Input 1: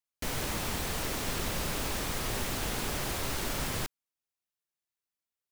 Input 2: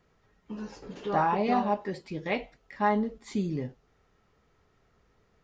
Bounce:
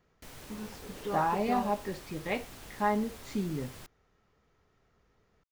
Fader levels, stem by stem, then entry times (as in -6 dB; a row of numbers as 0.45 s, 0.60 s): -15.0 dB, -3.0 dB; 0.00 s, 0.00 s